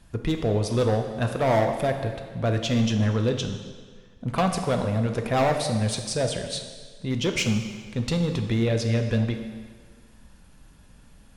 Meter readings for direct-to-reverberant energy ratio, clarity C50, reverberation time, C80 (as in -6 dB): 4.5 dB, 7.0 dB, 1.7 s, 8.5 dB